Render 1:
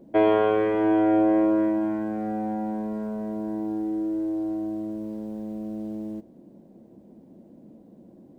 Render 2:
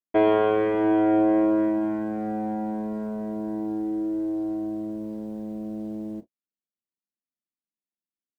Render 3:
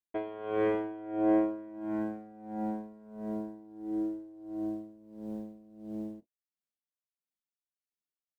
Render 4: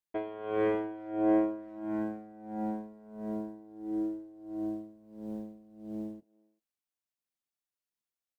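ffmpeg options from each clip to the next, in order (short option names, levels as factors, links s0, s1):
-af "agate=range=0.00112:threshold=0.0126:ratio=16:detection=peak"
-af "aeval=exprs='val(0)*pow(10,-20*(0.5-0.5*cos(2*PI*1.5*n/s))/20)':c=same,volume=0.668"
-filter_complex "[0:a]asplit=2[s0][s1];[s1]adelay=390,highpass=300,lowpass=3400,asoftclip=type=hard:threshold=0.0531,volume=0.0447[s2];[s0][s2]amix=inputs=2:normalize=0"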